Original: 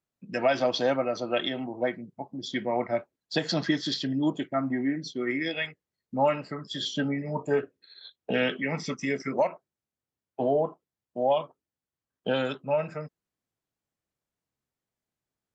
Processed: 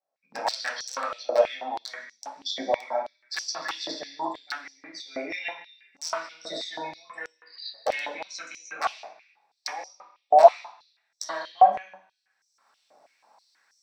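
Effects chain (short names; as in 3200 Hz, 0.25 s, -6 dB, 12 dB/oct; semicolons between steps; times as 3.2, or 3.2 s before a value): speed glide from 96% -> 129%; recorder AGC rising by 29 dB/s; wrapped overs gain 15 dB; reverb RT60 0.50 s, pre-delay 3 ms, DRR -7 dB; stepped high-pass 6.2 Hz 650–5800 Hz; gain -16 dB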